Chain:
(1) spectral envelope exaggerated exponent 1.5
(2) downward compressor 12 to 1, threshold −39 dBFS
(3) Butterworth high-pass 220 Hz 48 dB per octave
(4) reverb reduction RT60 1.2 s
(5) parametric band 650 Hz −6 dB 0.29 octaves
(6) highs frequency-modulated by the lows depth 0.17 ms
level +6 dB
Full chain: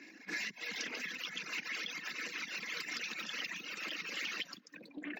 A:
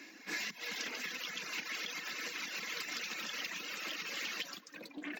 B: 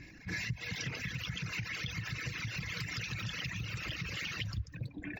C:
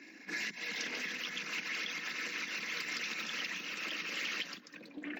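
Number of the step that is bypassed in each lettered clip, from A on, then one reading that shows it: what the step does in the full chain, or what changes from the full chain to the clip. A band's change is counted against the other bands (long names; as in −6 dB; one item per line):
1, 8 kHz band +3.0 dB
3, 125 Hz band +26.0 dB
4, change in integrated loudness +2.0 LU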